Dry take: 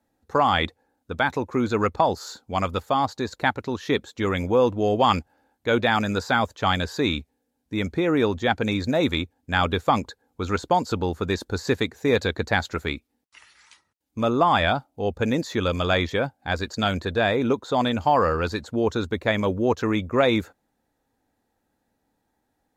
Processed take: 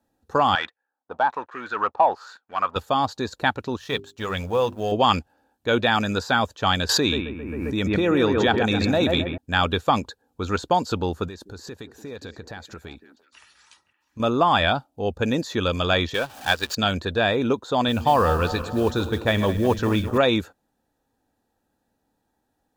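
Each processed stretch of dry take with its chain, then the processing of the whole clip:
0.55–2.76 sample leveller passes 2 + LFO band-pass sine 1.2 Hz 800–1800 Hz
3.77–4.92 G.711 law mismatch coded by A + bell 300 Hz -9.5 dB 0.85 oct + notches 50/100/150/200/250/300/350/400 Hz
6.89–9.38 analogue delay 0.133 s, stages 2048, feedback 44%, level -5 dB + backwards sustainer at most 26 dB/s
11.28–14.2 compressor 3:1, threshold -38 dBFS + delay with a stepping band-pass 0.173 s, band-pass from 290 Hz, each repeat 1.4 oct, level -9 dB
16.14–16.75 zero-crossing step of -28.5 dBFS + low shelf 480 Hz -9.5 dB + transient shaper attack +7 dB, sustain -8 dB
17.88–20.18 regenerating reverse delay 0.106 s, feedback 72%, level -13 dB + low shelf 79 Hz +11 dB + modulation noise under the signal 28 dB
whole clip: notch 2100 Hz, Q 5.5; dynamic EQ 3000 Hz, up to +4 dB, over -38 dBFS, Q 0.96

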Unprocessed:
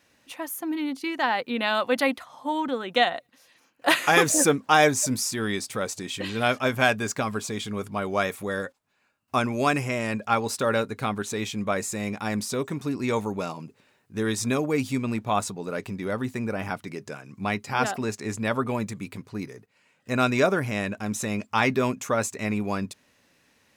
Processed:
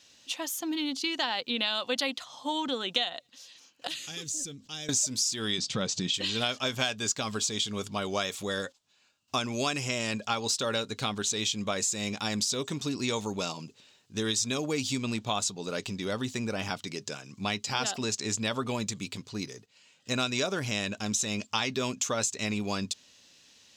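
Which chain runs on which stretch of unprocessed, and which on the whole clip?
3.87–4.89 passive tone stack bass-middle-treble 10-0-1 + fast leveller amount 50%
5.58–6.14 LPF 5000 Hz + bell 160 Hz +13.5 dB 0.9 oct + upward compressor, threshold -37 dBFS
whole clip: band shelf 4700 Hz +14 dB; compressor 5:1, threshold -23 dBFS; gain -3 dB

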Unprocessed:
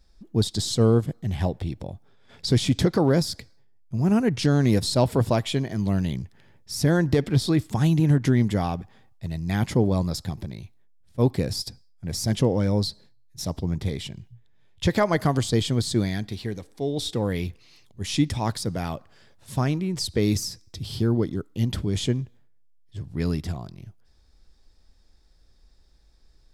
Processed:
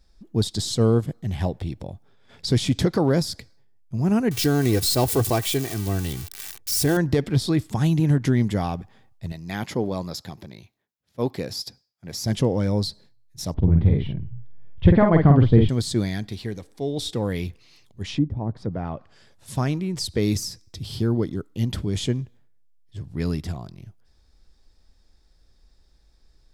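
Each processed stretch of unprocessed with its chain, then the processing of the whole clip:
4.31–6.97 switching spikes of -21 dBFS + comb 2.6 ms, depth 54%
9.32–12.26 HPF 320 Hz 6 dB/oct + bell 8800 Hz -10 dB 0.3 oct
13.54–15.69 LPF 3200 Hz 24 dB/oct + tilt -3 dB/oct + doubler 49 ms -4 dB
18.01–19.55 treble ducked by the level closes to 450 Hz, closed at -21 dBFS + high shelf 6100 Hz +7 dB
whole clip: dry

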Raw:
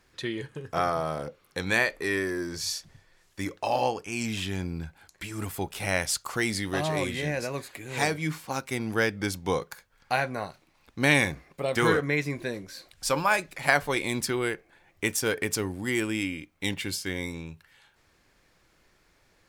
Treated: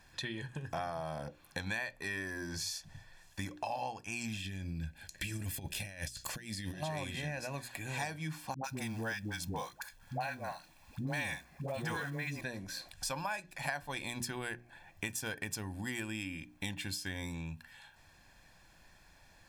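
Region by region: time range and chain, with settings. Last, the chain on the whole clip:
4.37–6.83 band shelf 1000 Hz -11.5 dB 1.2 oct + negative-ratio compressor -35 dBFS, ratio -0.5
8.54–12.41 companded quantiser 6-bit + dispersion highs, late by 99 ms, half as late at 500 Hz
whole clip: notches 60/120/180/240/300/360 Hz; comb 1.2 ms, depth 63%; compressor 4:1, threshold -39 dBFS; gain +1 dB

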